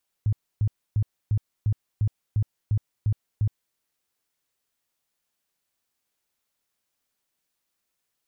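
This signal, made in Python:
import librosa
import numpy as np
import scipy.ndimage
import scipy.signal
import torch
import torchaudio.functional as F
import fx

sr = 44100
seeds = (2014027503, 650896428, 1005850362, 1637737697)

y = fx.tone_burst(sr, hz=106.0, cycles=7, every_s=0.35, bursts=10, level_db=-18.5)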